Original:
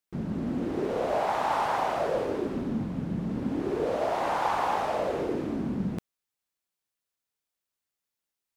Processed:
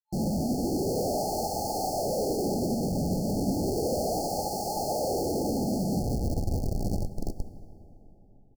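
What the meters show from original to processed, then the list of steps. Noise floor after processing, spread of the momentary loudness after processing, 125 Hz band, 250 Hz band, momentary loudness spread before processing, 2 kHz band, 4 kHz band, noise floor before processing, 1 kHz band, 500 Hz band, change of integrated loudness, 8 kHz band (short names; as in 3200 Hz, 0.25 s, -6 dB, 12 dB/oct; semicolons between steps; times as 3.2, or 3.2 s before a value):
-55 dBFS, 3 LU, +5.5 dB, +2.5 dB, 5 LU, under -40 dB, +5.0 dB, under -85 dBFS, -3.5 dB, +0.5 dB, 0.0 dB, +15.0 dB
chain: frequency-shifting echo 0.354 s, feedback 63%, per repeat -130 Hz, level -11.5 dB; dynamic EQ 190 Hz, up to +3 dB, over -41 dBFS, Q 2.3; Schmitt trigger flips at -43.5 dBFS; FFT band-reject 870–4200 Hz; plate-style reverb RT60 4.3 s, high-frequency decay 0.45×, DRR 7.5 dB; upward expander 1.5:1, over -41 dBFS; gain +4 dB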